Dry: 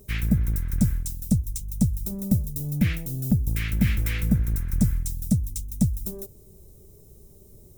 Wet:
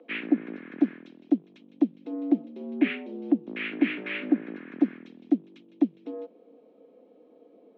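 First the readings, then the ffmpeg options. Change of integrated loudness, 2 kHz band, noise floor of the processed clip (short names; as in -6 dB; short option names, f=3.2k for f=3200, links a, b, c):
-3.0 dB, +2.0 dB, -58 dBFS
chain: -af "highpass=f=190:t=q:w=0.5412,highpass=f=190:t=q:w=1.307,lowpass=f=3k:t=q:w=0.5176,lowpass=f=3k:t=q:w=0.7071,lowpass=f=3k:t=q:w=1.932,afreqshift=86,volume=2.5dB"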